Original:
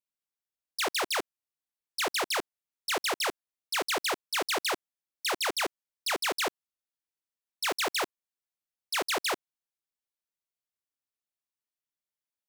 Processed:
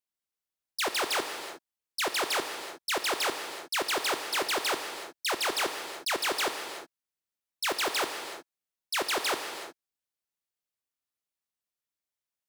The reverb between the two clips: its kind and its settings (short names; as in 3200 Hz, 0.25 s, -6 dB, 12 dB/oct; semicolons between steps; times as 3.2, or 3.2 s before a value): non-linear reverb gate 0.39 s flat, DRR 6 dB